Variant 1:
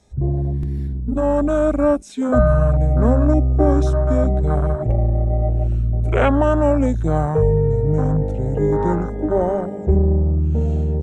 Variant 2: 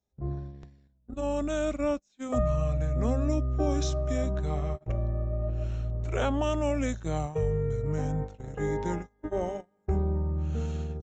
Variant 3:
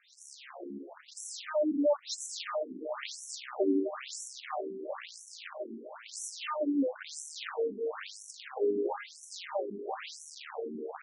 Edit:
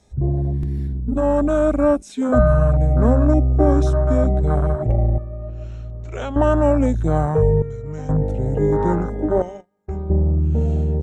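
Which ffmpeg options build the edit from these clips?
-filter_complex "[1:a]asplit=3[s0][s1][s2];[0:a]asplit=4[s3][s4][s5][s6];[s3]atrim=end=5.182[s7];[s0]atrim=start=5.178:end=6.362[s8];[s4]atrim=start=6.358:end=7.622[s9];[s1]atrim=start=7.618:end=8.092[s10];[s5]atrim=start=8.088:end=9.422[s11];[s2]atrim=start=9.418:end=10.102[s12];[s6]atrim=start=10.098[s13];[s7][s8]acrossfade=d=0.004:c1=hsin:c2=hsin[s14];[s14][s9]acrossfade=d=0.004:c1=hsin:c2=hsin[s15];[s15][s10]acrossfade=d=0.004:c1=hsin:c2=hsin[s16];[s16][s11]acrossfade=d=0.004:c1=hsin:c2=hsin[s17];[s17][s12]acrossfade=d=0.004:c1=hsin:c2=hsin[s18];[s18][s13]acrossfade=d=0.004:c1=hsin:c2=hsin"

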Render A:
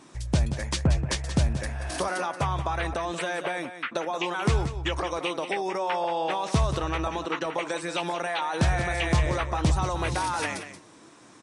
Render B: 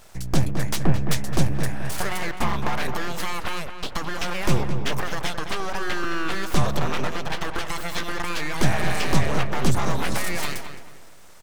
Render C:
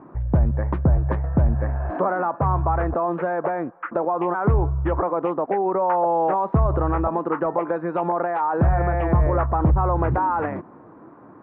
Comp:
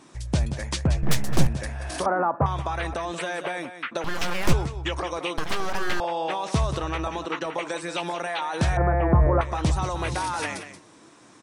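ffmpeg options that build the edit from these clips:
-filter_complex "[1:a]asplit=3[s0][s1][s2];[2:a]asplit=2[s3][s4];[0:a]asplit=6[s5][s6][s7][s8][s9][s10];[s5]atrim=end=1.032[s11];[s0]atrim=start=1.028:end=1.472[s12];[s6]atrim=start=1.468:end=2.062[s13];[s3]atrim=start=2.058:end=2.462[s14];[s7]atrim=start=2.458:end=4.042[s15];[s1]atrim=start=4.038:end=4.532[s16];[s8]atrim=start=4.528:end=5.382[s17];[s2]atrim=start=5.378:end=6.002[s18];[s9]atrim=start=5.998:end=8.772[s19];[s4]atrim=start=8.768:end=9.412[s20];[s10]atrim=start=9.408[s21];[s11][s12]acrossfade=d=0.004:c1=hsin:c2=hsin[s22];[s22][s13]acrossfade=d=0.004:c1=hsin:c2=hsin[s23];[s23][s14]acrossfade=d=0.004:c1=hsin:c2=hsin[s24];[s24][s15]acrossfade=d=0.004:c1=hsin:c2=hsin[s25];[s25][s16]acrossfade=d=0.004:c1=hsin:c2=hsin[s26];[s26][s17]acrossfade=d=0.004:c1=hsin:c2=hsin[s27];[s27][s18]acrossfade=d=0.004:c1=hsin:c2=hsin[s28];[s28][s19]acrossfade=d=0.004:c1=hsin:c2=hsin[s29];[s29][s20]acrossfade=d=0.004:c1=hsin:c2=hsin[s30];[s30][s21]acrossfade=d=0.004:c1=hsin:c2=hsin"

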